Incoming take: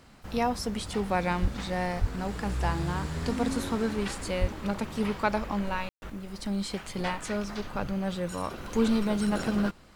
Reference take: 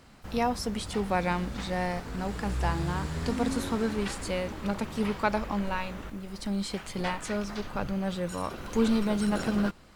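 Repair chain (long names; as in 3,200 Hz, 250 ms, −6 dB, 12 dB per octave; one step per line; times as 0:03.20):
0:01.41–0:01.53: high-pass filter 140 Hz 24 dB per octave
0:02.00–0:02.12: high-pass filter 140 Hz 24 dB per octave
0:04.40–0:04.52: high-pass filter 140 Hz 24 dB per octave
ambience match 0:05.89–0:06.02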